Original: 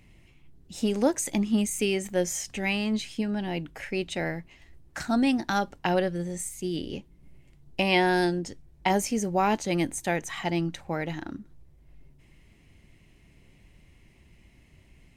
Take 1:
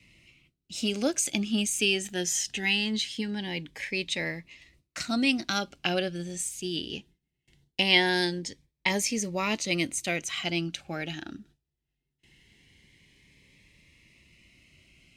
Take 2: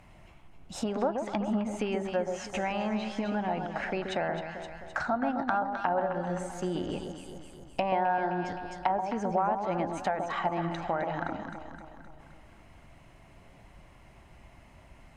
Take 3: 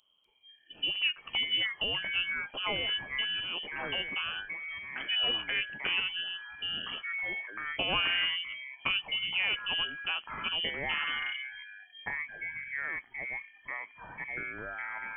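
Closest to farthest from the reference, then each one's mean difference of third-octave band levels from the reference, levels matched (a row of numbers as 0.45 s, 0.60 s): 1, 2, 3; 4.0 dB, 9.5 dB, 14.5 dB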